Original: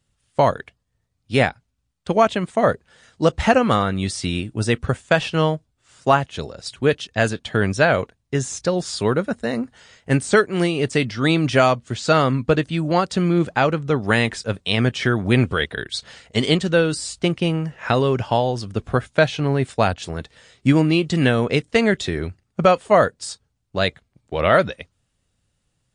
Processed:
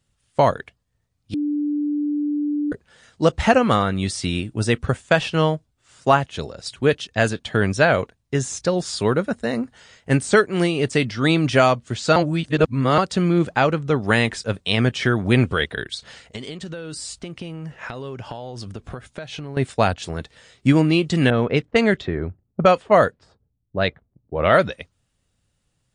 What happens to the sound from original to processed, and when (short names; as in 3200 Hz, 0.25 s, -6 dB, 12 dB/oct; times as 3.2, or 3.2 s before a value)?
1.34–2.72 bleep 294 Hz -19.5 dBFS
12.16–12.98 reverse
15.94–19.57 compressor 20:1, threshold -28 dBFS
21.3–24.59 low-pass opened by the level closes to 310 Hz, open at -11 dBFS